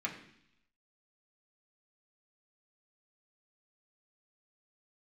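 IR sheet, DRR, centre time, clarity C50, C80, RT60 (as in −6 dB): −2.5 dB, 19 ms, 9.0 dB, 11.5 dB, 0.70 s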